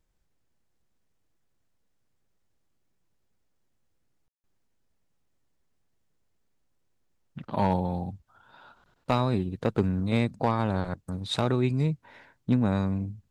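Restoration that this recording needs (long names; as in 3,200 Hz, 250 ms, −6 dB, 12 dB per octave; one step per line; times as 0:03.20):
clipped peaks rebuilt −13 dBFS
ambience match 0:04.28–0:04.44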